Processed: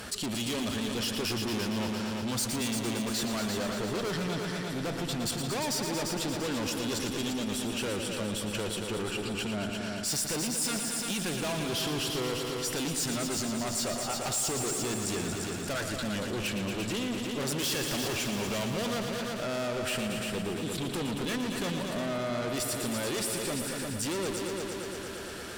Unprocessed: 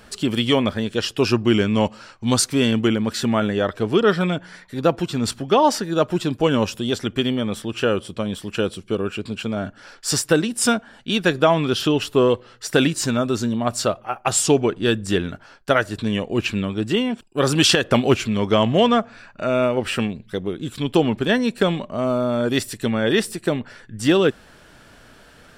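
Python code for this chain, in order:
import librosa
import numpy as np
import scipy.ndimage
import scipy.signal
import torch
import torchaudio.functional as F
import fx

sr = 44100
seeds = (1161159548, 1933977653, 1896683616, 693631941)

y = scipy.signal.sosfilt(scipy.signal.butter(2, 53.0, 'highpass', fs=sr, output='sos'), x)
y = fx.tube_stage(y, sr, drive_db=27.0, bias=0.3)
y = fx.high_shelf(y, sr, hz=4200.0, db=7.5)
y = fx.echo_heads(y, sr, ms=115, heads='all three', feedback_pct=58, wet_db=-10)
y = fx.env_flatten(y, sr, amount_pct=50)
y = y * librosa.db_to_amplitude(-7.0)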